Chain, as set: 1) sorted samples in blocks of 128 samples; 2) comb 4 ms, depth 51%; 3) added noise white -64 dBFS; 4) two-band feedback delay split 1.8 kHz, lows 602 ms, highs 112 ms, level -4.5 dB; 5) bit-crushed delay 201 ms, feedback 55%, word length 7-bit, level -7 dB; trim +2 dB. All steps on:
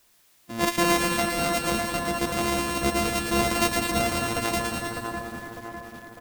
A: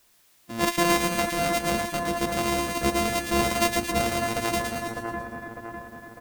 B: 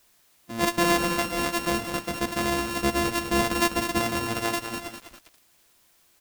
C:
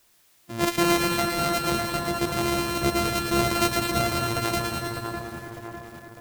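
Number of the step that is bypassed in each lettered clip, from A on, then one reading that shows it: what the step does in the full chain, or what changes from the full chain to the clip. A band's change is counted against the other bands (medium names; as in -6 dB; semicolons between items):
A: 5, 500 Hz band +1.5 dB; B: 4, momentary loudness spread change -6 LU; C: 2, 125 Hz band +3.0 dB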